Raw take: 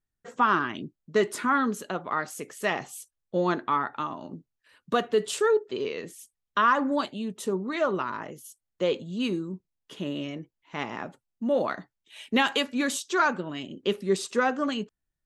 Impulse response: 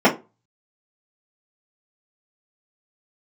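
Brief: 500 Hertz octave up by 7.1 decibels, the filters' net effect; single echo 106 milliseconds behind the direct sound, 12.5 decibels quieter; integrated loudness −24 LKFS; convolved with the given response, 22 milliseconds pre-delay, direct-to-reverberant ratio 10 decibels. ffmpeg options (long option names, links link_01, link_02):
-filter_complex "[0:a]equalizer=frequency=500:width_type=o:gain=8.5,aecho=1:1:106:0.237,asplit=2[link_01][link_02];[1:a]atrim=start_sample=2205,adelay=22[link_03];[link_02][link_03]afir=irnorm=-1:irlink=0,volume=-33dB[link_04];[link_01][link_04]amix=inputs=2:normalize=0,volume=-1.5dB"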